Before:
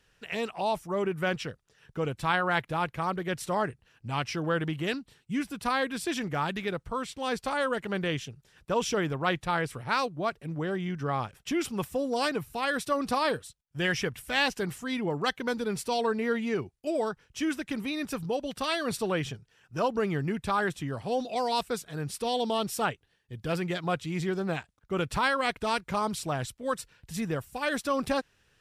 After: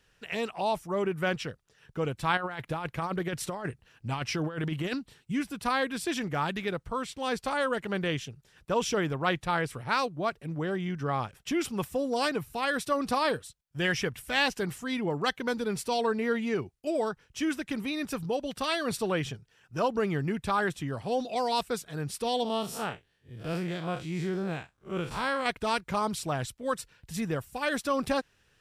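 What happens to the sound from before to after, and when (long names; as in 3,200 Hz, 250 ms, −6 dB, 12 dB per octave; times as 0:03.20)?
0:02.37–0:05.32: compressor whose output falls as the input rises −31 dBFS, ratio −0.5
0:22.43–0:25.46: spectrum smeared in time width 96 ms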